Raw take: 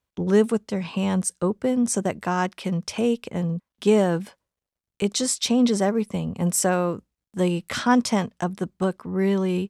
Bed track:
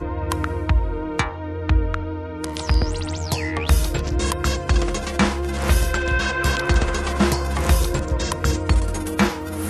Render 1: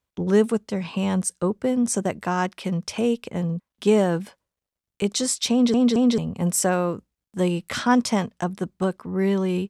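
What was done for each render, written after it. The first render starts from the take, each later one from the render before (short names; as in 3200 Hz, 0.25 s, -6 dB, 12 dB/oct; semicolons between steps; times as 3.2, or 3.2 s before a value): 5.52 stutter in place 0.22 s, 3 plays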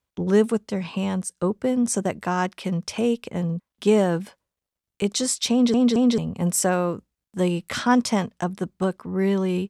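0.76–1.37 fade out equal-power, to -8 dB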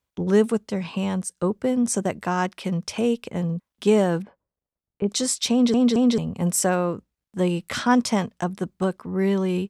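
4.22–5.09 Bessel low-pass 910 Hz; 6.75–7.49 high shelf 4900 Hz -5 dB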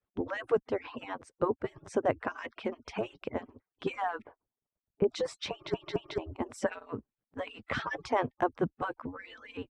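median-filter separation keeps percussive; LPF 1900 Hz 12 dB/oct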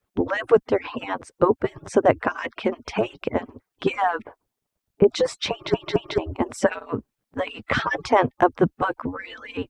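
gain +11 dB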